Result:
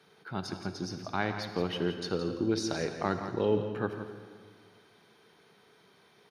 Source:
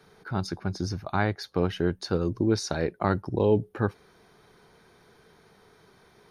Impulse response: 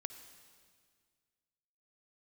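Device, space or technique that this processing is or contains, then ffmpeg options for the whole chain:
PA in a hall: -filter_complex "[0:a]highpass=140,equalizer=f=3k:t=o:w=0.77:g=7,aecho=1:1:169:0.316[a];[1:a]atrim=start_sample=2205[b];[a][b]afir=irnorm=-1:irlink=0,volume=-2dB"

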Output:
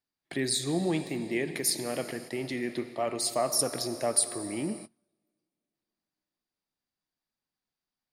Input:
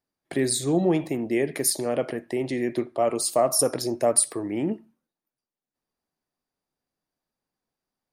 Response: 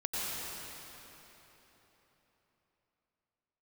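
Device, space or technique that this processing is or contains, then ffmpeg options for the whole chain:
keyed gated reverb: -filter_complex "[0:a]asplit=3[a][b][c];[1:a]atrim=start_sample=2205[d];[b][d]afir=irnorm=-1:irlink=0[e];[c]apad=whole_len=358455[f];[e][f]sidechaingate=range=-33dB:threshold=-40dB:ratio=16:detection=peak,volume=-15.5dB[g];[a][g]amix=inputs=2:normalize=0,equalizer=f=500:t=o:w=1:g=-4,equalizer=f=2k:t=o:w=1:g=3,equalizer=f=4k:t=o:w=1:g=6,volume=-6.5dB"

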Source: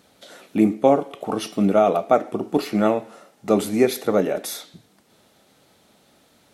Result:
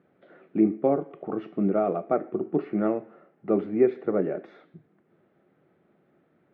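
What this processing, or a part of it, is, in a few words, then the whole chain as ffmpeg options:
bass cabinet: -af "highpass=88,equalizer=f=160:t=q:w=4:g=9,equalizer=f=360:t=q:w=4:g=10,equalizer=f=920:t=q:w=4:g=-6,lowpass=f=2k:w=0.5412,lowpass=f=2k:w=1.3066,volume=-8.5dB"

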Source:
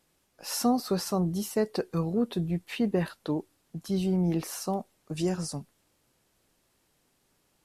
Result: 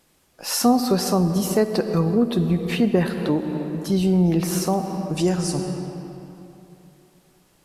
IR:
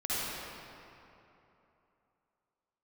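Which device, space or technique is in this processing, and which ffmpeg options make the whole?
ducked reverb: -filter_complex "[0:a]asplit=3[a][b][c];[1:a]atrim=start_sample=2205[d];[b][d]afir=irnorm=-1:irlink=0[e];[c]apad=whole_len=337282[f];[e][f]sidechaincompress=threshold=-32dB:ratio=5:attack=31:release=287,volume=-10dB[g];[a][g]amix=inputs=2:normalize=0,volume=7dB"

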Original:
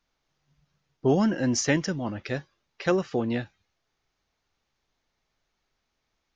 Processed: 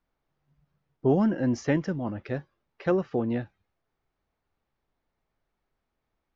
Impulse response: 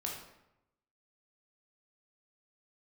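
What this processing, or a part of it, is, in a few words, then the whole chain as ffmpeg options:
through cloth: -af "lowpass=7.3k,highshelf=f=2.7k:g=-18"

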